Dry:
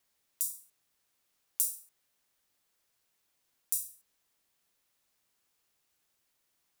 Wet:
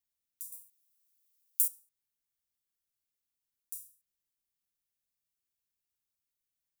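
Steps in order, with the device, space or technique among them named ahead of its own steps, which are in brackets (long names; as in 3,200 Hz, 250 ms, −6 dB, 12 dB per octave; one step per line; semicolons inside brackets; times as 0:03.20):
0:00.52–0:01.68: spectral tilt +3.5 dB per octave
smiley-face EQ (low-shelf EQ 170 Hz +8.5 dB; parametric band 700 Hz −8 dB 1.9 octaves; high-shelf EQ 9,000 Hz +8 dB)
level −16.5 dB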